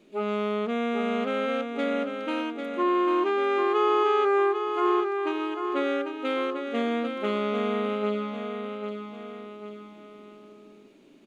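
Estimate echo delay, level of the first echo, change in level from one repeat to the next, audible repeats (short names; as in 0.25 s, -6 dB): 0.796 s, -6.5 dB, -6.5 dB, 3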